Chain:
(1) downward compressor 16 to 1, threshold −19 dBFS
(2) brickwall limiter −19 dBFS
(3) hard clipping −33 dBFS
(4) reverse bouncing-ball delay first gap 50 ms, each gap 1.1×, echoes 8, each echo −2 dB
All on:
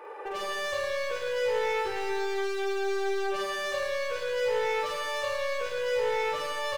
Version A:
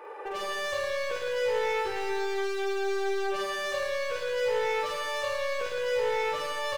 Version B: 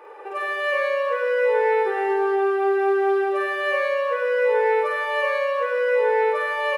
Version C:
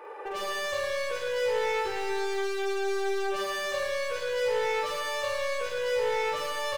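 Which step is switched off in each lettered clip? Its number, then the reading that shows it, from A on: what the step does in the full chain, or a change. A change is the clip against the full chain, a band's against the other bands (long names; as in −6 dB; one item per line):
1, average gain reduction 3.0 dB
3, distortion level −6 dB
2, average gain reduction 2.0 dB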